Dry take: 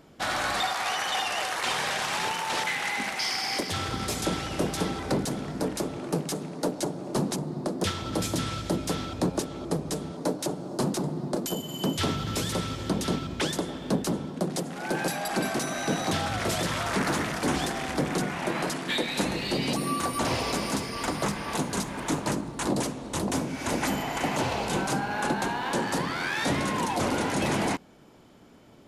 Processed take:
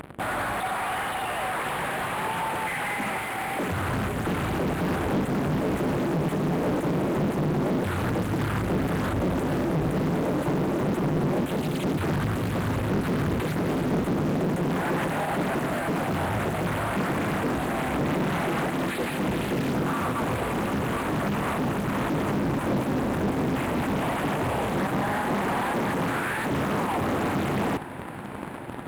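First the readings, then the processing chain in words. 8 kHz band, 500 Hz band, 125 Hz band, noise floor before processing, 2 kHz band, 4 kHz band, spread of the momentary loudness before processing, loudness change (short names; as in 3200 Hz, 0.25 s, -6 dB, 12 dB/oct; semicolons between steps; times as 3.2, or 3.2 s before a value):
-8.0 dB, +3.0 dB, +5.5 dB, -39 dBFS, +1.0 dB, -7.0 dB, 4 LU, +2.0 dB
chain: median filter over 9 samples; in parallel at -8 dB: fuzz box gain 51 dB, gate -48 dBFS; on the sum: HPF 54 Hz 12 dB/oct; upward compressor, threshold -38 dBFS; resonant high shelf 7600 Hz +9.5 dB, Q 3; limiter -20.5 dBFS, peak gain reduction 15.5 dB; tone controls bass +4 dB, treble -14 dB; diffused feedback echo 0.84 s, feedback 73%, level -15 dB; Doppler distortion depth 0.92 ms; gain +1.5 dB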